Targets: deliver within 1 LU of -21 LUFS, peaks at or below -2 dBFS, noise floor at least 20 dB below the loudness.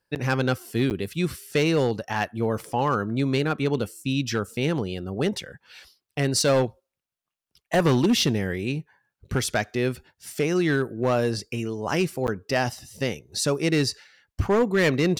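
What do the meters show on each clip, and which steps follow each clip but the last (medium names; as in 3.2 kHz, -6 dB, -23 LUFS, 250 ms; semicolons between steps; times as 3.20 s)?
clipped samples 1.2%; clipping level -15.0 dBFS; dropouts 3; longest dropout 9.3 ms; loudness -25.0 LUFS; peak level -15.0 dBFS; loudness target -21.0 LUFS
-> clip repair -15 dBFS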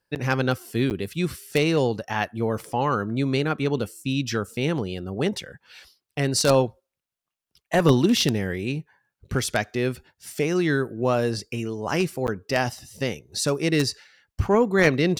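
clipped samples 0.0%; dropouts 3; longest dropout 9.3 ms
-> interpolate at 0.15/0.90/12.27 s, 9.3 ms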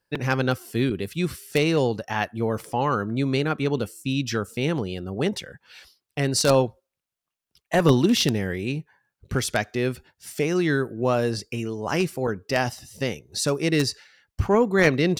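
dropouts 0; loudness -24.5 LUFS; peak level -6.0 dBFS; loudness target -21.0 LUFS
-> trim +3.5 dB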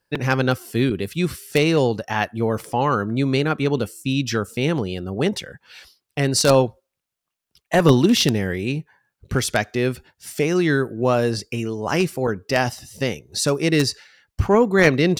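loudness -21.0 LUFS; peak level -2.5 dBFS; noise floor -82 dBFS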